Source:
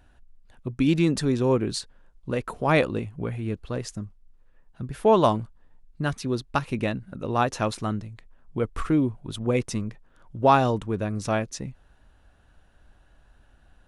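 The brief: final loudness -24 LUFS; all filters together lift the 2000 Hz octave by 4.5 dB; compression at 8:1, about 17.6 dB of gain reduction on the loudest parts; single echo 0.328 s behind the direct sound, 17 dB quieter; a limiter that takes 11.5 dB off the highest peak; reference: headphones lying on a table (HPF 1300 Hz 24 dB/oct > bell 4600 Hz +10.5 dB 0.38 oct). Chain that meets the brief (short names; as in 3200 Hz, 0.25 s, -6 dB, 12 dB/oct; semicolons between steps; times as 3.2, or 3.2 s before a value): bell 2000 Hz +6 dB; compressor 8:1, threshold -32 dBFS; limiter -31 dBFS; HPF 1300 Hz 24 dB/oct; bell 4600 Hz +10.5 dB 0.38 oct; echo 0.328 s -17 dB; gain +21 dB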